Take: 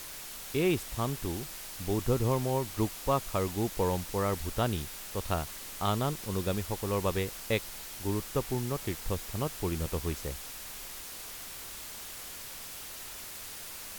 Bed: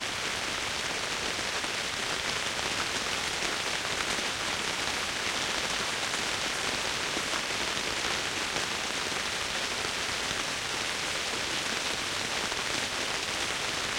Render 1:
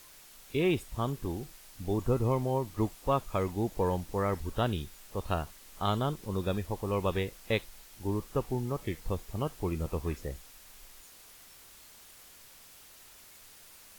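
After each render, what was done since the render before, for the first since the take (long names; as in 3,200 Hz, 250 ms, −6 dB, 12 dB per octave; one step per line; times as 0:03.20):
noise reduction from a noise print 11 dB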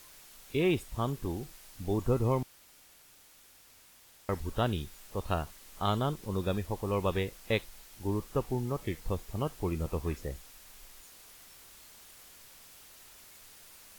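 0:02.43–0:04.29: fill with room tone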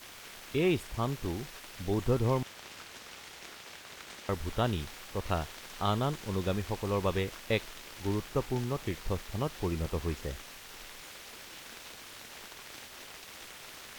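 mix in bed −17.5 dB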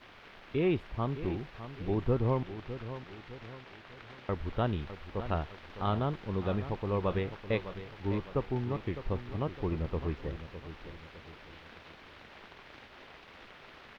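high-frequency loss of the air 340 metres
repeating echo 607 ms, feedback 44%, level −12 dB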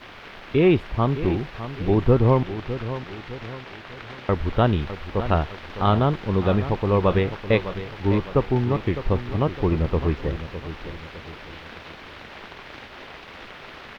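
level +11.5 dB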